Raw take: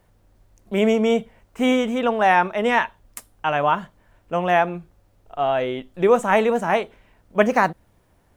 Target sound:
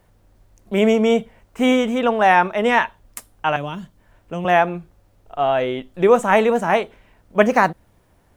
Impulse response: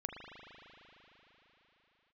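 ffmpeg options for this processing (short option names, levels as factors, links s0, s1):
-filter_complex "[0:a]asettb=1/sr,asplit=3[s0][s1][s2];[s0]atrim=end=3.564[s3];[s1]atrim=start=3.56:end=4.45,asetpts=PTS-STARTPTS,afade=t=in:d=0.004:c=qsin,afade=t=out:st=0.886:d=0.004:c=qsin,acrossover=split=360|3000[s4][s5][s6];[s5]acompressor=threshold=0.0158:ratio=6[s7];[s4][s7][s6]amix=inputs=3:normalize=0[s8];[s2]atrim=start=4.446[s9];[s3][s8]acrossfade=d=0.004:c1=hsin:c2=qsin[s10];[s10][s9]acrossfade=d=0.004:c1=qsin:c2=hsin,volume=1.33"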